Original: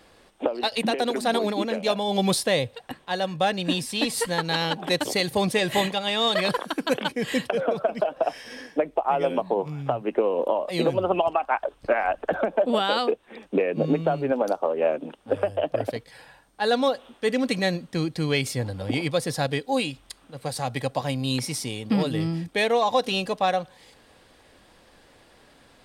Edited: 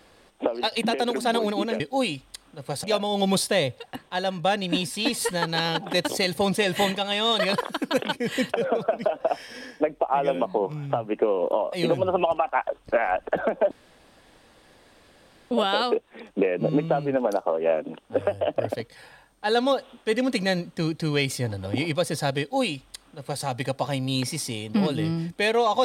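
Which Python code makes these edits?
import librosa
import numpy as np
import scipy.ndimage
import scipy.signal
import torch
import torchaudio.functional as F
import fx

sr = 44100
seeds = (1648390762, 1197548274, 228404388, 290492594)

y = fx.edit(x, sr, fx.insert_room_tone(at_s=12.67, length_s=1.8),
    fx.duplicate(start_s=19.56, length_s=1.04, to_s=1.8), tone=tone)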